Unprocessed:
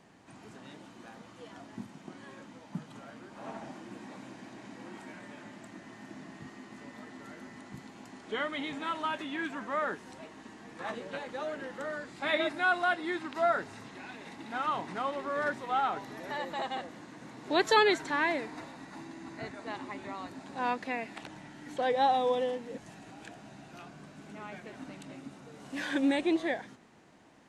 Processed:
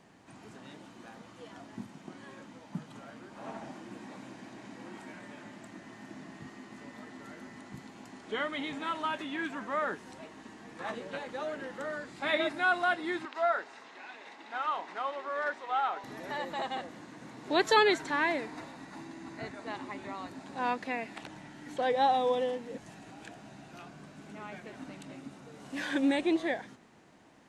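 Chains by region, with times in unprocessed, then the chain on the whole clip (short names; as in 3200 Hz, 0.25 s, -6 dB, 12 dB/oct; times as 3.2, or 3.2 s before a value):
13.25–16.04 HPF 510 Hz + air absorption 73 m
whole clip: dry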